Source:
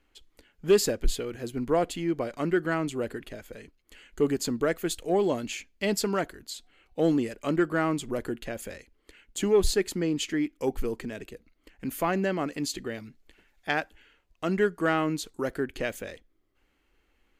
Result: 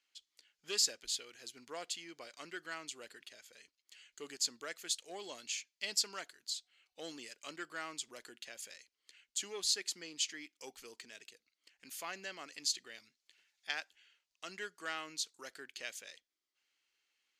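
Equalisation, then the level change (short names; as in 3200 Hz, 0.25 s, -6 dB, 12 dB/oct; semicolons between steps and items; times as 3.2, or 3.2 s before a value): band-pass 5300 Hz, Q 1.5; +2.0 dB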